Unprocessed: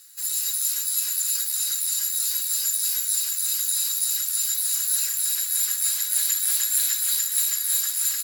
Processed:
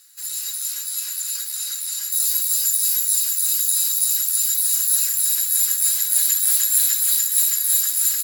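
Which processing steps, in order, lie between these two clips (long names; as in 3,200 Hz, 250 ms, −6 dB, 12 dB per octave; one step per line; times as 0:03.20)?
high-shelf EQ 7,700 Hz −3 dB, from 0:02.12 +7 dB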